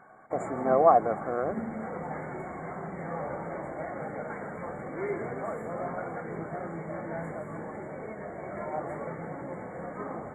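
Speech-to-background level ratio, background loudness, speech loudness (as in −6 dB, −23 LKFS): 11.0 dB, −37.0 LKFS, −26.0 LKFS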